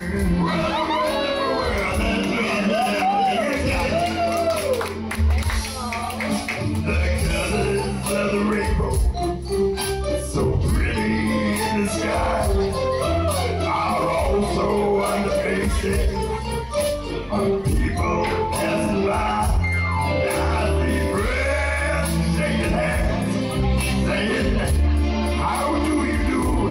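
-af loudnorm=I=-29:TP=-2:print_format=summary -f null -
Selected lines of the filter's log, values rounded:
Input Integrated:    -21.7 LUFS
Input True Peak:     -11.3 dBTP
Input LRA:             1.7 LU
Input Threshold:     -31.7 LUFS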